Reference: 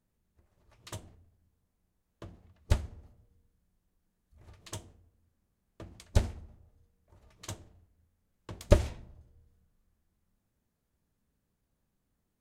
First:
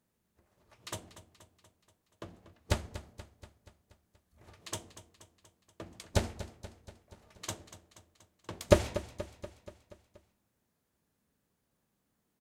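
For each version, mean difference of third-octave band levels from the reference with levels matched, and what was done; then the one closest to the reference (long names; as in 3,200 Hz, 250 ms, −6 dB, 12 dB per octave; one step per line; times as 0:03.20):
5.0 dB: high-pass filter 210 Hz 6 dB per octave
repeating echo 239 ms, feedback 58%, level −14 dB
level +4 dB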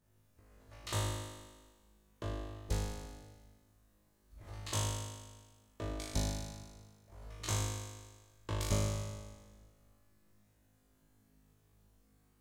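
12.5 dB: downward compressor, threshold −37 dBFS, peak gain reduction 22 dB
on a send: flutter between parallel walls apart 3.3 metres, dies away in 1.4 s
on the sum: level +2.5 dB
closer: first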